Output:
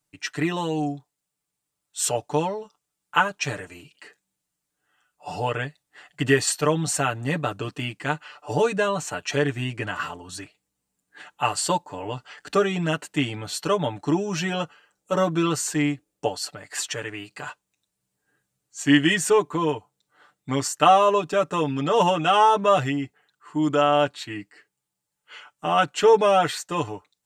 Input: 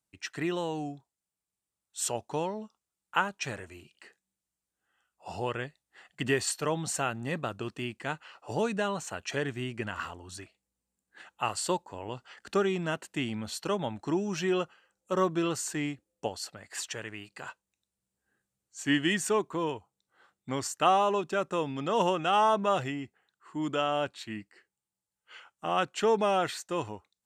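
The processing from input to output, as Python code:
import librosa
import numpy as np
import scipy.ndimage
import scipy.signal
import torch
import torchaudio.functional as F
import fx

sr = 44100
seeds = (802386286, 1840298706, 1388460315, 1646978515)

y = x + 0.84 * np.pad(x, (int(6.8 * sr / 1000.0), 0))[:len(x)]
y = F.gain(torch.from_numpy(y), 5.0).numpy()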